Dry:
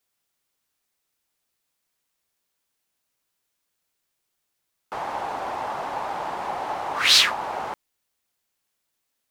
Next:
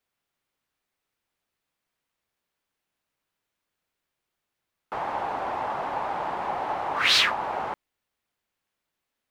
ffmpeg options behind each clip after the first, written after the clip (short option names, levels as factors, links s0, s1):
-af "bass=f=250:g=1,treble=f=4000:g=-10"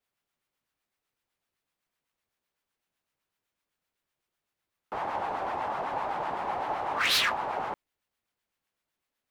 -filter_complex "[0:a]acrossover=split=850[s0][s1];[s0]aeval=exprs='val(0)*(1-0.5/2+0.5/2*cos(2*PI*7.9*n/s))':c=same[s2];[s1]aeval=exprs='val(0)*(1-0.5/2-0.5/2*cos(2*PI*7.9*n/s))':c=same[s3];[s2][s3]amix=inputs=2:normalize=0,asoftclip=type=hard:threshold=0.0891"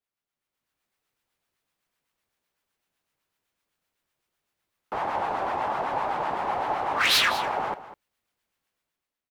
-af "dynaudnorm=f=170:g=7:m=3.55,aecho=1:1:200:0.188,volume=0.447"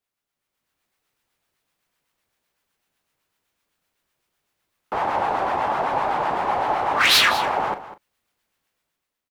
-filter_complex "[0:a]asplit=2[s0][s1];[s1]adelay=39,volume=0.237[s2];[s0][s2]amix=inputs=2:normalize=0,volume=1.78"